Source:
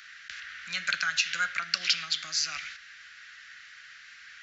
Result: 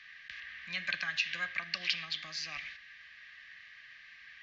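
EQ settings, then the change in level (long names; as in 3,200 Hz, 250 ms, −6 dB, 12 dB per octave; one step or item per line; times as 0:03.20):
Butterworth band-reject 1,400 Hz, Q 3.8
high-frequency loss of the air 250 metres
0.0 dB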